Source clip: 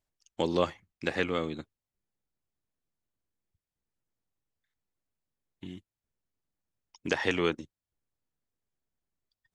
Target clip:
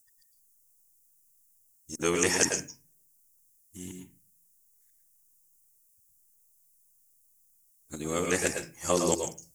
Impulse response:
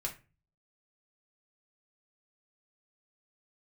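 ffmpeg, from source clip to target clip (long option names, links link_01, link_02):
-filter_complex "[0:a]areverse,asplit=2[link_01][link_02];[1:a]atrim=start_sample=2205,adelay=108[link_03];[link_02][link_03]afir=irnorm=-1:irlink=0,volume=-5.5dB[link_04];[link_01][link_04]amix=inputs=2:normalize=0,aexciter=amount=13.9:drive=8.8:freq=5800"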